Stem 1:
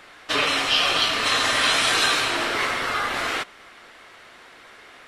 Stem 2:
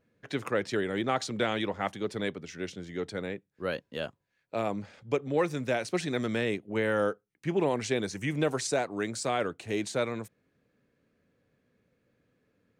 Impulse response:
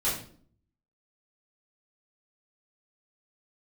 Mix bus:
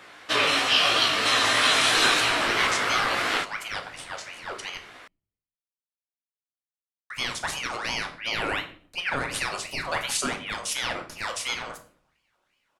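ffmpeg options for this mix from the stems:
-filter_complex "[0:a]highpass=67,flanger=delay=15.5:depth=4.6:speed=3,volume=1.33[s0];[1:a]equalizer=f=7000:t=o:w=2.3:g=10,aeval=exprs='val(0)*sin(2*PI*1800*n/s+1800*0.55/2.8*sin(2*PI*2.8*n/s))':c=same,adelay=1500,volume=0.891,asplit=3[s1][s2][s3];[s1]atrim=end=4.78,asetpts=PTS-STARTPTS,afade=t=out:st=4.776:d=0.004:c=hsin[s4];[s2]atrim=start=4.78:end=7.1,asetpts=PTS-STARTPTS,volume=0[s5];[s3]atrim=start=7.1,asetpts=PTS-STARTPTS,afade=t=in:d=0.004:c=hsin[s6];[s4][s5][s6]concat=n=3:v=0:a=1,asplit=2[s7][s8];[s8]volume=0.237[s9];[2:a]atrim=start_sample=2205[s10];[s9][s10]afir=irnorm=-1:irlink=0[s11];[s0][s7][s11]amix=inputs=3:normalize=0"

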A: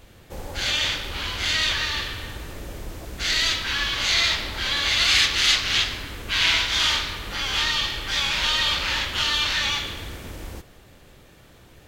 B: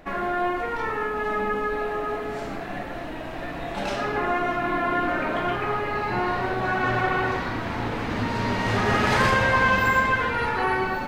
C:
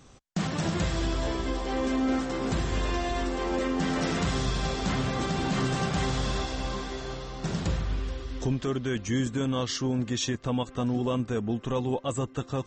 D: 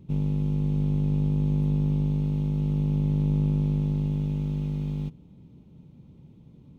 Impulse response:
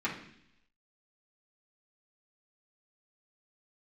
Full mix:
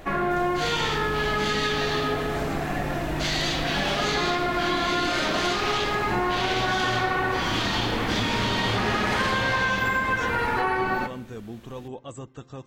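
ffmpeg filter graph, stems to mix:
-filter_complex "[0:a]alimiter=limit=0.188:level=0:latency=1:release=25,volume=0.794[s0];[1:a]volume=1.33,asplit=2[s1][s2];[s2]volume=0.188[s3];[2:a]volume=0.355,asplit=2[s4][s5];[s5]volume=0.0668[s6];[3:a]volume=0.316[s7];[4:a]atrim=start_sample=2205[s8];[s3][s6]amix=inputs=2:normalize=0[s9];[s9][s8]afir=irnorm=-1:irlink=0[s10];[s0][s1][s4][s7][s10]amix=inputs=5:normalize=0,acompressor=threshold=0.0891:ratio=6"

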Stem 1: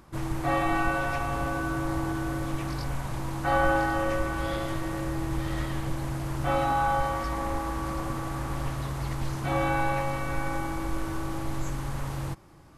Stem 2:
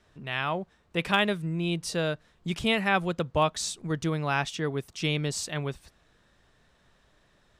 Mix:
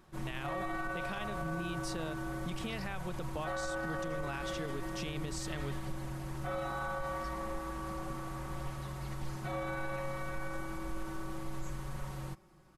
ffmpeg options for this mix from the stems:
-filter_complex "[0:a]aecho=1:1:5.4:0.76,volume=0.299[s0];[1:a]acompressor=threshold=0.0355:ratio=6,volume=0.531[s1];[s0][s1]amix=inputs=2:normalize=0,alimiter=level_in=1.68:limit=0.0631:level=0:latency=1:release=42,volume=0.596"

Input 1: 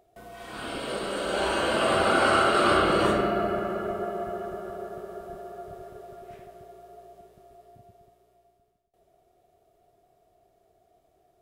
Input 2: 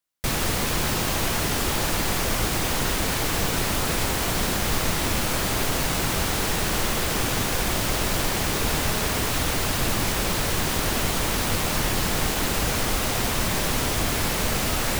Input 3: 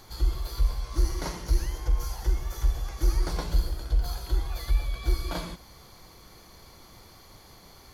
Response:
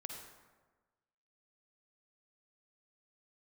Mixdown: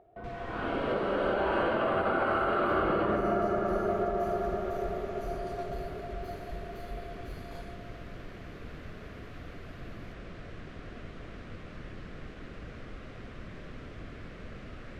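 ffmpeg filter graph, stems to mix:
-filter_complex "[0:a]volume=1.41,asplit=2[s0][s1];[s1]volume=0.0708[s2];[1:a]equalizer=f=880:t=o:w=0.52:g=-14,volume=0.141[s3];[2:a]bandreject=f=5400:w=12,adelay=2200,volume=0.119[s4];[s0][s3]amix=inputs=2:normalize=0,lowpass=1800,alimiter=limit=0.224:level=0:latency=1:release=122,volume=1[s5];[3:a]atrim=start_sample=2205[s6];[s2][s6]afir=irnorm=-1:irlink=0[s7];[s4][s5][s7]amix=inputs=3:normalize=0,alimiter=limit=0.112:level=0:latency=1:release=336"

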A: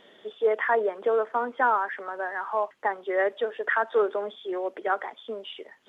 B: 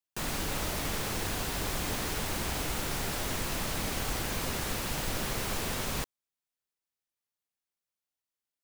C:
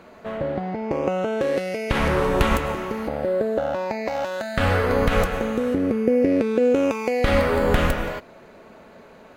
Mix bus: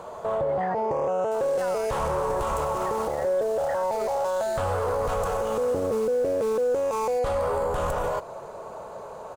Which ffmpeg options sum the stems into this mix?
-filter_complex "[0:a]volume=0.355[s0];[1:a]equalizer=f=7600:w=0.79:g=8.5,adelay=1150,volume=0.224[s1];[2:a]equalizer=f=125:t=o:w=1:g=6,equalizer=f=250:t=o:w=1:g=-12,equalizer=f=500:t=o:w=1:g=8,equalizer=f=1000:t=o:w=1:g=12,equalizer=f=2000:t=o:w=1:g=-11,equalizer=f=4000:t=o:w=1:g=-3,equalizer=f=8000:t=o:w=1:g=11,alimiter=limit=0.335:level=0:latency=1:release=417,acontrast=89,volume=0.531[s2];[s0][s1][s2]amix=inputs=3:normalize=0,alimiter=limit=0.106:level=0:latency=1:release=22"

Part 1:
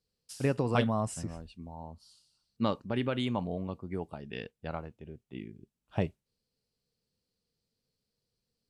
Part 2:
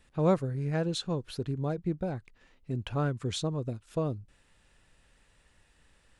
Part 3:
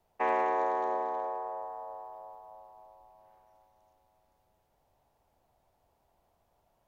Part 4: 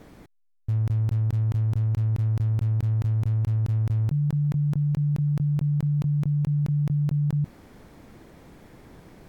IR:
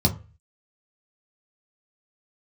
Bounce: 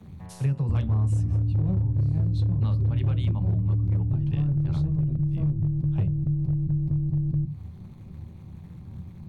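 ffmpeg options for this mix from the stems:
-filter_complex "[0:a]volume=0.944,asplit=2[s0][s1];[s1]volume=0.106[s2];[1:a]adelay=1400,volume=0.473,asplit=2[s3][s4];[s4]volume=0.168[s5];[2:a]volume=0.112[s6];[3:a]lowshelf=f=63:g=9.5,acompressor=threshold=0.0501:ratio=5,tremolo=f=180:d=0.974,volume=0.891,asplit=2[s7][s8];[s8]volume=0.112[s9];[s3][s6][s7]amix=inputs=3:normalize=0,aeval=exprs='(tanh(63.1*val(0)+0.8)-tanh(0.8))/63.1':c=same,alimiter=level_in=4.73:limit=0.0631:level=0:latency=1:release=135,volume=0.211,volume=1[s10];[4:a]atrim=start_sample=2205[s11];[s2][s5][s9]amix=inputs=3:normalize=0[s12];[s12][s11]afir=irnorm=-1:irlink=0[s13];[s0][s10][s13]amix=inputs=3:normalize=0,lowshelf=f=65:g=11.5,acrossover=split=88|180[s14][s15][s16];[s14]acompressor=threshold=0.0316:ratio=4[s17];[s15]acompressor=threshold=0.0562:ratio=4[s18];[s16]acompressor=threshold=0.0126:ratio=4[s19];[s17][s18][s19]amix=inputs=3:normalize=0,volume=7.94,asoftclip=hard,volume=0.126"

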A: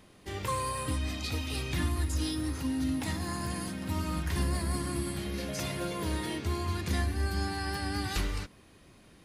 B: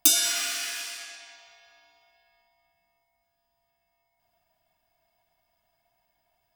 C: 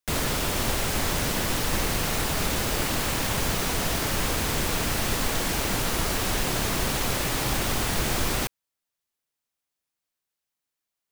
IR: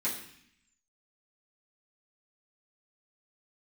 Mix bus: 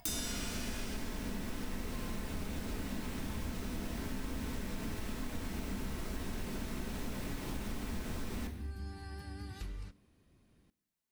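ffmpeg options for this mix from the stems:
-filter_complex "[0:a]adelay=1450,volume=0.133,asplit=2[s0][s1];[s1]volume=0.0841[s2];[1:a]asoftclip=type=tanh:threshold=0.119,acompressor=mode=upward:threshold=0.00501:ratio=2.5,volume=0.531[s3];[2:a]acrossover=split=290|3900[s4][s5][s6];[s4]acompressor=threshold=0.0316:ratio=4[s7];[s5]acompressor=threshold=0.0178:ratio=4[s8];[s6]acompressor=threshold=0.00891:ratio=4[s9];[s7][s8][s9]amix=inputs=3:normalize=0,volume=0.355,asplit=2[s10][s11];[s11]volume=0.562[s12];[3:a]atrim=start_sample=2205[s13];[s2][s12]amix=inputs=2:normalize=0[s14];[s14][s13]afir=irnorm=-1:irlink=0[s15];[s0][s3][s10][s15]amix=inputs=4:normalize=0,lowshelf=f=320:g=11,acompressor=threshold=0.0112:ratio=2.5"

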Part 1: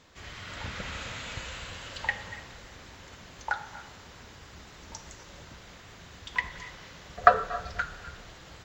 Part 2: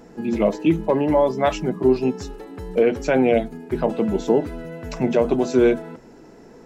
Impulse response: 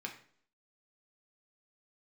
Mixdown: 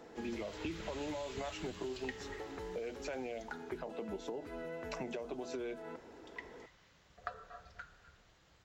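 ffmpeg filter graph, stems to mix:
-filter_complex "[0:a]volume=0.376,afade=t=out:st=3.14:d=0.7:silence=0.316228[s0];[1:a]bass=f=250:g=-15,treble=f=4000:g=-9,alimiter=limit=0.1:level=0:latency=1:release=181,volume=0.562[s1];[s0][s1]amix=inputs=2:normalize=0,acrossover=split=130|3000[s2][s3][s4];[s3]acompressor=threshold=0.0112:ratio=6[s5];[s2][s5][s4]amix=inputs=3:normalize=0"

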